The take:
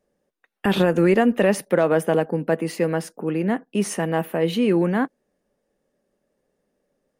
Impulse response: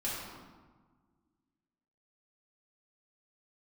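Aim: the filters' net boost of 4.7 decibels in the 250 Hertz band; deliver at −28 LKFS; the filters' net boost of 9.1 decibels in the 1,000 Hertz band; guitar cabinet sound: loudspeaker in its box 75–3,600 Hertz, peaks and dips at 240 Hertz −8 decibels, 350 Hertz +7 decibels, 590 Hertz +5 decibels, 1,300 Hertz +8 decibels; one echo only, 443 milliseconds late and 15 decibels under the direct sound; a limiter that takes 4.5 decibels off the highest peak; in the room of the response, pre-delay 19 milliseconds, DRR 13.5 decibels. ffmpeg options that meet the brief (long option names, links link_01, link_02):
-filter_complex "[0:a]equalizer=frequency=250:width_type=o:gain=4,equalizer=frequency=1000:width_type=o:gain=9,alimiter=limit=-7dB:level=0:latency=1,aecho=1:1:443:0.178,asplit=2[link_01][link_02];[1:a]atrim=start_sample=2205,adelay=19[link_03];[link_02][link_03]afir=irnorm=-1:irlink=0,volume=-18dB[link_04];[link_01][link_04]amix=inputs=2:normalize=0,highpass=75,equalizer=frequency=240:width_type=q:width=4:gain=-8,equalizer=frequency=350:width_type=q:width=4:gain=7,equalizer=frequency=590:width_type=q:width=4:gain=5,equalizer=frequency=1300:width_type=q:width=4:gain=8,lowpass=frequency=3600:width=0.5412,lowpass=frequency=3600:width=1.3066,volume=-11.5dB"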